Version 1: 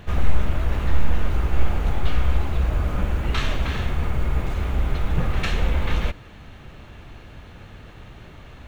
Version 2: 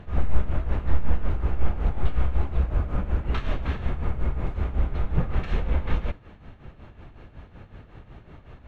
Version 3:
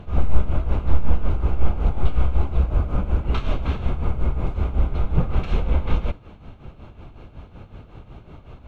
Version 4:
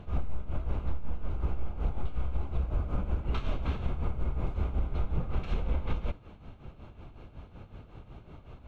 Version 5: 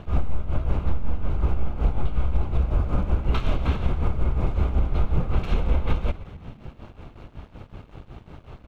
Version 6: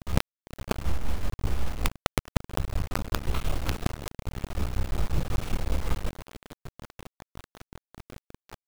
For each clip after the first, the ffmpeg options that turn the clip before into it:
-af "lowpass=f=1.3k:p=1,tremolo=f=5.4:d=0.69"
-af "equalizer=f=1.8k:w=6.4:g=-15,volume=4dB"
-af "acompressor=threshold=-17dB:ratio=10,volume=-6.5dB"
-filter_complex "[0:a]aeval=exprs='sgn(val(0))*max(abs(val(0))-0.00188,0)':c=same,asplit=7[a][b][c][d][e][f][g];[b]adelay=125,afreqshift=-46,volume=-17dB[h];[c]adelay=250,afreqshift=-92,volume=-21.6dB[i];[d]adelay=375,afreqshift=-138,volume=-26.2dB[j];[e]adelay=500,afreqshift=-184,volume=-30.7dB[k];[f]adelay=625,afreqshift=-230,volume=-35.3dB[l];[g]adelay=750,afreqshift=-276,volume=-39.9dB[m];[a][h][i][j][k][l][m]amix=inputs=7:normalize=0,volume=8.5dB"
-af "acrusher=bits=3:dc=4:mix=0:aa=0.000001,volume=-4dB"

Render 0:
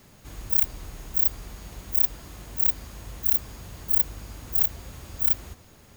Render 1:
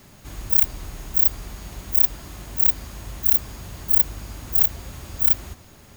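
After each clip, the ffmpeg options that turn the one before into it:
-af "bandreject=f=480:w=12,volume=4.5dB"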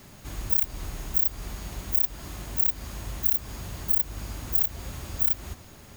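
-af "acompressor=threshold=-20dB:ratio=4"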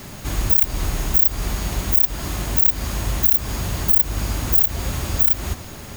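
-af "alimiter=level_in=14.5dB:limit=-1dB:release=50:level=0:latency=1,volume=-2dB"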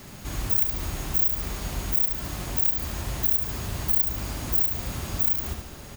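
-af "aecho=1:1:72|144|216|288|360|432:0.501|0.231|0.106|0.0488|0.0224|0.0103,volume=-7.5dB"

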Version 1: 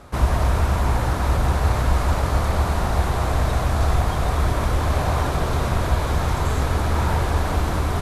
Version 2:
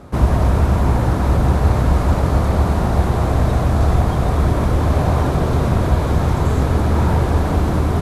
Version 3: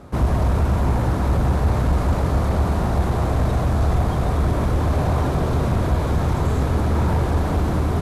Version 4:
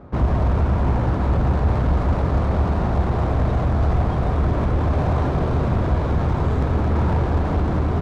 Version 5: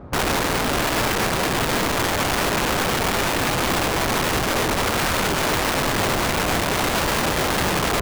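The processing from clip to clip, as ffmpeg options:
-af "equalizer=f=200:w=0.33:g=11,volume=-2dB"
-af "asoftclip=type=tanh:threshold=-7dB,volume=-2.5dB"
-af "adynamicsmooth=sensitivity=3:basefreq=2k"
-af "aeval=exprs='(mod(9.44*val(0)+1,2)-1)/9.44':c=same,volume=3dB"

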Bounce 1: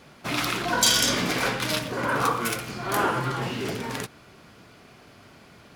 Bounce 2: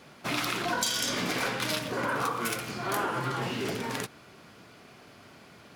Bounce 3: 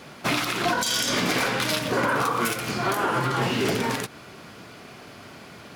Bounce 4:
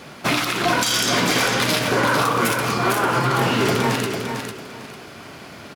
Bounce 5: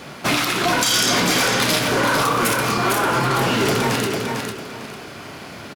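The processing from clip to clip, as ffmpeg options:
-af "highpass=f=110:p=1,acompressor=threshold=-25dB:ratio=6,volume=-1dB"
-af "alimiter=limit=-22dB:level=0:latency=1:release=154,volume=8.5dB"
-af "aecho=1:1:450|900|1350:0.501|0.125|0.0313,volume=4dB"
-filter_complex "[0:a]acrossover=split=4600[a][b];[a]asoftclip=type=tanh:threshold=-17dB[c];[c][b]amix=inputs=2:normalize=0,asplit=2[d][e];[e]adelay=28,volume=-11.5dB[f];[d][f]amix=inputs=2:normalize=0,volume=3dB"

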